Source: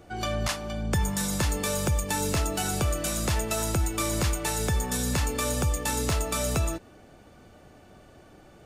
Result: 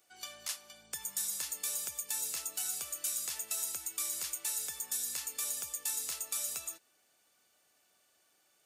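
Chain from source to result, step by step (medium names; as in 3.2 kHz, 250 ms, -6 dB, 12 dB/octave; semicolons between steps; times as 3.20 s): differentiator; trim -3.5 dB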